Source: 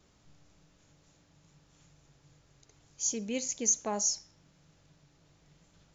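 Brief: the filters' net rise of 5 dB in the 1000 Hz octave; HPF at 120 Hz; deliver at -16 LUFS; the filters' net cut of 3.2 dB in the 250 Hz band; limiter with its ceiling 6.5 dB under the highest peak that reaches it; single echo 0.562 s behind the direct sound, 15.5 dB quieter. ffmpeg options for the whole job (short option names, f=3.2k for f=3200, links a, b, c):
-af "highpass=120,equalizer=f=250:t=o:g=-3.5,equalizer=f=1k:t=o:g=6.5,alimiter=limit=-22dB:level=0:latency=1,aecho=1:1:562:0.168,volume=17.5dB"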